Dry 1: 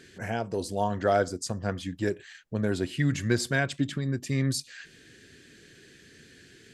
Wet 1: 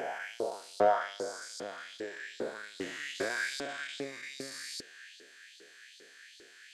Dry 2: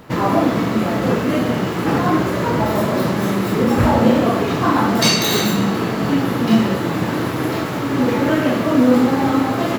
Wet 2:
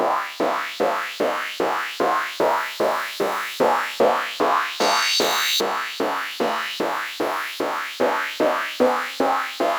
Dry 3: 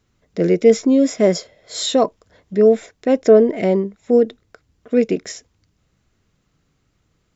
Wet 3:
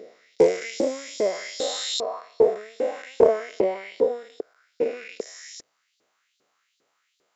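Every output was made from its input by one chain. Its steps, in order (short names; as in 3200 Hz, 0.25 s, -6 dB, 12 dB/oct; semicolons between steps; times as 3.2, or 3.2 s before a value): stepped spectrum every 0.4 s; LFO high-pass saw up 2.5 Hz 390–4500 Hz; Doppler distortion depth 0.13 ms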